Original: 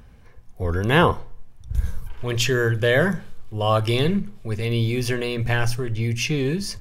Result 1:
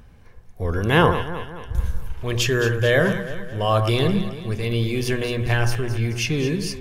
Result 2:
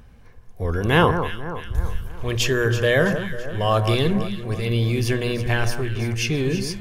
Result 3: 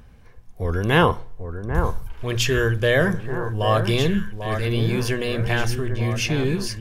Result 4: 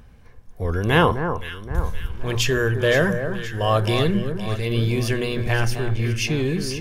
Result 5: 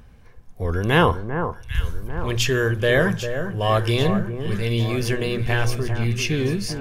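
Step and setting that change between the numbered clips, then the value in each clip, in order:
delay that swaps between a low-pass and a high-pass, delay time: 109, 165, 794, 260, 397 milliseconds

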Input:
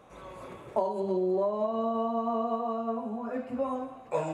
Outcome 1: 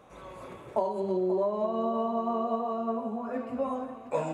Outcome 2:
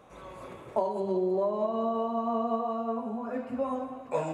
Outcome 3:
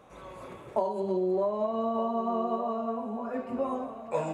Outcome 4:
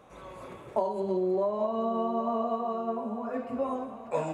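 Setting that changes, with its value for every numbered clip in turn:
delay with a low-pass on its return, delay time: 534, 191, 1,201, 819 milliseconds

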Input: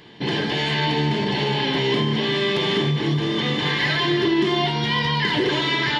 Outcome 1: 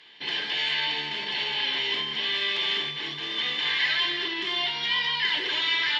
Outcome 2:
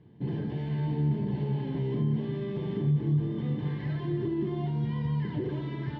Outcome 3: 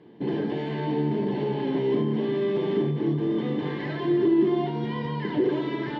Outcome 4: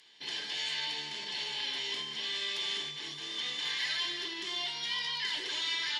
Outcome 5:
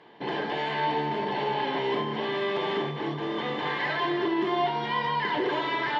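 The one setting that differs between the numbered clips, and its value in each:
resonant band-pass, frequency: 2,900, 100, 310, 7,800, 800 Hertz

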